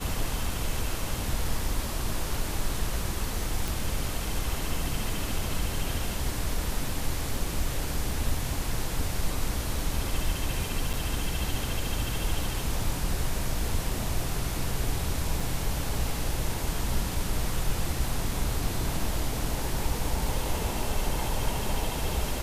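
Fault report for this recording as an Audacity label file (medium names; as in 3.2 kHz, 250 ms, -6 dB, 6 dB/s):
3.680000	3.680000	pop
10.930000	10.940000	dropout 6.6 ms
15.400000	15.400000	dropout 3.3 ms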